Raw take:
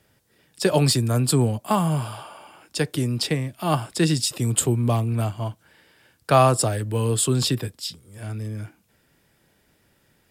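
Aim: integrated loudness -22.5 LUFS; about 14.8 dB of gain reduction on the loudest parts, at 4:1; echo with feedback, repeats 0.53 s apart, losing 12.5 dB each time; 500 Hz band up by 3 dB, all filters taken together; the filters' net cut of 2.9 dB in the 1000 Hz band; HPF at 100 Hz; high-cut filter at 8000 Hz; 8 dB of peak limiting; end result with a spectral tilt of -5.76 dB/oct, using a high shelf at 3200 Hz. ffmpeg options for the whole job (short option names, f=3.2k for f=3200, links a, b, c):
-af "highpass=100,lowpass=8k,equalizer=f=500:t=o:g=6,equalizer=f=1k:t=o:g=-5.5,highshelf=f=3.2k:g=-8,acompressor=threshold=-30dB:ratio=4,alimiter=level_in=0.5dB:limit=-24dB:level=0:latency=1,volume=-0.5dB,aecho=1:1:530|1060|1590:0.237|0.0569|0.0137,volume=12.5dB"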